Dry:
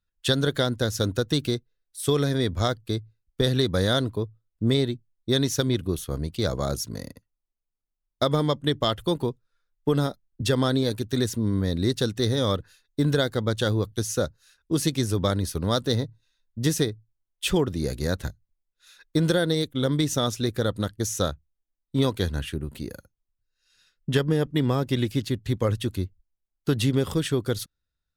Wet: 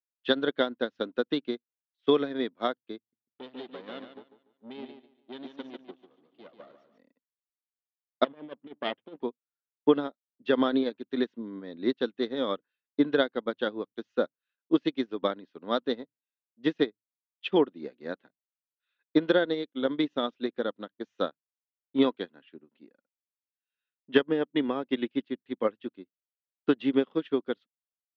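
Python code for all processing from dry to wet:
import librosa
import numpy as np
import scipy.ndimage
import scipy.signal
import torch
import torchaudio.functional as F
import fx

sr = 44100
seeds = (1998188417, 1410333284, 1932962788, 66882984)

y = fx.chain(x, sr, fx.tube_stage(drive_db=24.0, bias=0.8),
    fx.echo_feedback(ms=145, feedback_pct=45, wet_db=-4.0), at=(2.98, 6.98))
y = fx.chain(y, sr, fx.lower_of_two(delay_ms=0.37),
    fx.high_shelf(hz=2900.0, db=-8.0),
    fx.over_compress(threshold_db=-26.0, ratio=-0.5), at=(8.24, 9.22))
y = scipy.signal.sosfilt(scipy.signal.ellip(3, 1.0, 50, [240.0, 3100.0], 'bandpass', fs=sr, output='sos'), y)
y = fx.upward_expand(y, sr, threshold_db=-39.0, expansion=2.5)
y = y * librosa.db_to_amplitude(5.0)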